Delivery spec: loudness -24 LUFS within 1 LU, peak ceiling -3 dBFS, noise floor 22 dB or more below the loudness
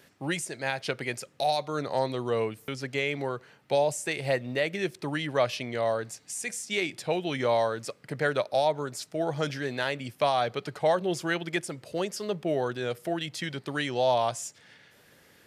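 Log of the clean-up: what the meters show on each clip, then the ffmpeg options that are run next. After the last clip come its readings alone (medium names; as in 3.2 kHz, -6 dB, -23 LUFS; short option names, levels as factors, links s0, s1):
loudness -29.5 LUFS; peak level -12.0 dBFS; loudness target -24.0 LUFS
-> -af "volume=1.88"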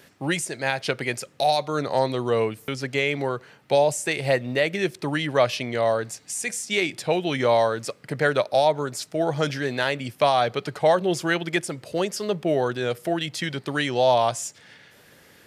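loudness -24.0 LUFS; peak level -6.5 dBFS; noise floor -54 dBFS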